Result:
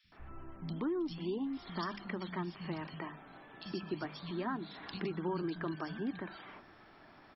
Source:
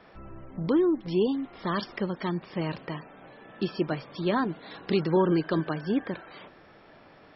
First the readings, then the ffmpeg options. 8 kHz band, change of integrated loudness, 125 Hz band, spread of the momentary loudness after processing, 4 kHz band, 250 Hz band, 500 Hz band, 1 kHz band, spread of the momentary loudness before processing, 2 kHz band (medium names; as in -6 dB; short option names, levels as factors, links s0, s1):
no reading, -11.0 dB, -10.5 dB, 16 LU, -8.0 dB, -10.5 dB, -12.5 dB, -9.0 dB, 16 LU, -7.5 dB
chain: -filter_complex "[0:a]equalizer=f=510:w=2.5:g=-10.5,bandreject=f=50:t=h:w=6,bandreject=f=100:t=h:w=6,bandreject=f=150:t=h:w=6,bandreject=f=200:t=h:w=6,acompressor=threshold=0.0251:ratio=3,acrossover=split=170|2700[s0][s1][s2];[s0]adelay=40[s3];[s1]adelay=120[s4];[s3][s4][s2]amix=inputs=3:normalize=0,volume=0.794"